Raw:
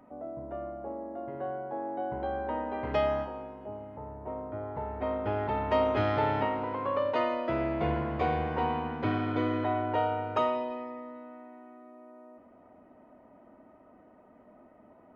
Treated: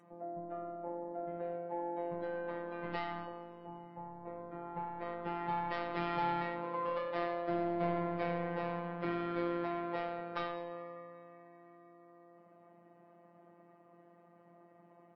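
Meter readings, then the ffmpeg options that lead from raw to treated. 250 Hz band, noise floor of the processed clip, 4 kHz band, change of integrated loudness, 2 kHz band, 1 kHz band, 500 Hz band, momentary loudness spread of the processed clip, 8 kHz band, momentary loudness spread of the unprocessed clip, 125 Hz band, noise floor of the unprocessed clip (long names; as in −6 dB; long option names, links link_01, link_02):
−6.5 dB, −62 dBFS, −7.0 dB, −7.0 dB, −5.0 dB, −7.0 dB, −7.5 dB, 14 LU, can't be measured, 15 LU, −9.5 dB, −58 dBFS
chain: -af "aresample=11025,asoftclip=type=tanh:threshold=-25dB,aresample=44100,aecho=1:1:99|198:0.112|0.0281,afftfilt=real='hypot(re,im)*cos(PI*b)':imag='0':win_size=1024:overlap=0.75" -ar 22050 -c:a libvorbis -b:a 32k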